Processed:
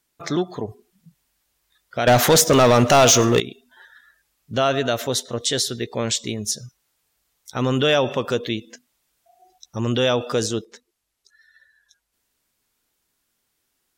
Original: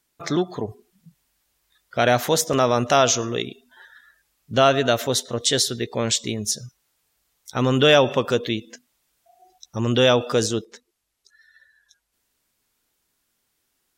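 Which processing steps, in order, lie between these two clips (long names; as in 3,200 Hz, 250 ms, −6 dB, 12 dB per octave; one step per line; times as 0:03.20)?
in parallel at +1 dB: brickwall limiter −11.5 dBFS, peak gain reduction 8 dB
0:02.07–0:03.40: on the sum: leveller curve on the samples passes 3
level −7 dB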